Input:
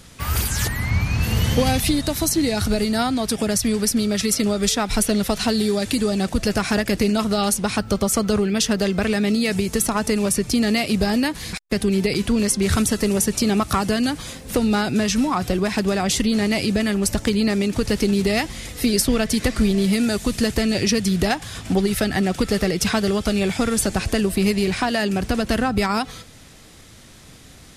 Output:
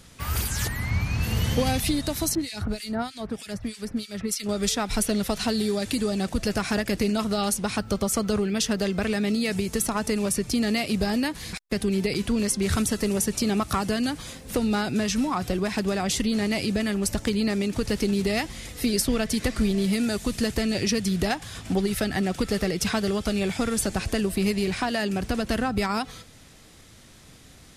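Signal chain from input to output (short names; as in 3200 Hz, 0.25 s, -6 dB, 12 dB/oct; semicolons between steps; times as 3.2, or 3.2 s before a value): 2.35–4.49 harmonic tremolo 3.2 Hz, depth 100%, crossover 1800 Hz; gain -5 dB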